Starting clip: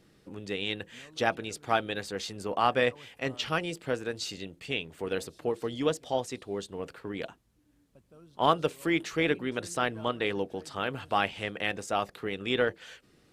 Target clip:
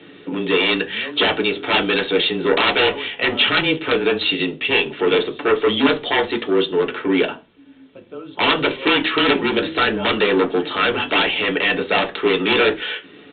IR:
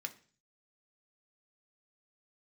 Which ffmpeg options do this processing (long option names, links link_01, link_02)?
-filter_complex "[0:a]highpass=frequency=110:poles=1,asplit=2[link_01][link_02];[link_02]alimiter=limit=-19dB:level=0:latency=1:release=360,volume=-2dB[link_03];[link_01][link_03]amix=inputs=2:normalize=0,aeval=exprs='0.447*sin(PI/2*7.08*val(0)/0.447)':channel_layout=same,afreqshift=-21,aresample=8000,aeval=exprs='(mod(1.26*val(0)+1,2)-1)/1.26':channel_layout=same,aresample=44100[link_04];[1:a]atrim=start_sample=2205,asetrate=70560,aresample=44100[link_05];[link_04][link_05]afir=irnorm=-1:irlink=0,volume=3dB"